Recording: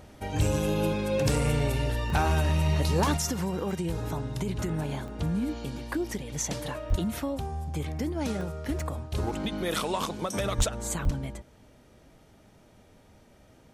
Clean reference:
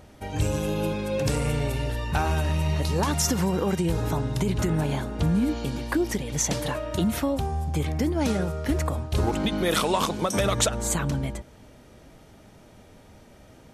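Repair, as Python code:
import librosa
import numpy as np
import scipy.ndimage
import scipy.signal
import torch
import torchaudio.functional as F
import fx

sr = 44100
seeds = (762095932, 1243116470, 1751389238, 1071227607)

y = fx.fix_declip(x, sr, threshold_db=-17.0)
y = fx.highpass(y, sr, hz=140.0, slope=24, at=(6.89, 7.01), fade=0.02)
y = fx.highpass(y, sr, hz=140.0, slope=24, at=(10.57, 10.69), fade=0.02)
y = fx.highpass(y, sr, hz=140.0, slope=24, at=(11.04, 11.16), fade=0.02)
y = fx.fix_interpolate(y, sr, at_s=(2.1, 3.07, 3.71, 5.08, 6.9, 8.41, 8.8, 11.05), length_ms=1.1)
y = fx.gain(y, sr, db=fx.steps((0.0, 0.0), (3.17, 6.0)))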